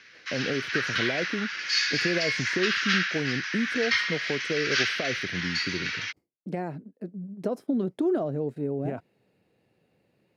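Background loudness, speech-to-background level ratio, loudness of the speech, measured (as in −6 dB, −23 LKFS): −27.0 LKFS, −5.0 dB, −32.0 LKFS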